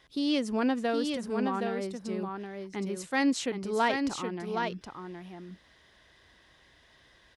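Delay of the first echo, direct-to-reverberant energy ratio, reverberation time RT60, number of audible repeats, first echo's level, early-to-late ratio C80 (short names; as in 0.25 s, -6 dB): 0.769 s, none, none, 1, -5.0 dB, none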